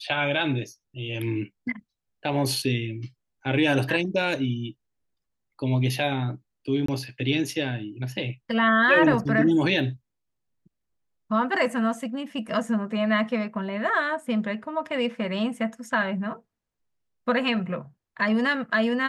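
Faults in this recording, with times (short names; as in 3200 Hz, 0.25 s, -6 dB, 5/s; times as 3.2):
6.86–6.88 gap 24 ms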